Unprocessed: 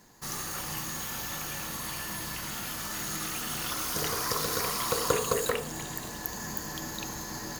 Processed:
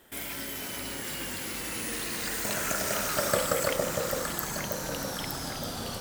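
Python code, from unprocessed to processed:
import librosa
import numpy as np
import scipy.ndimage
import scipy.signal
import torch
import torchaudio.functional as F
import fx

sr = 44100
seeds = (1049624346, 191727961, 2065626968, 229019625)

y = fx.speed_glide(x, sr, from_pct=186, to_pct=67)
y = fx.echo_alternate(y, sr, ms=458, hz=990.0, feedback_pct=67, wet_db=-2)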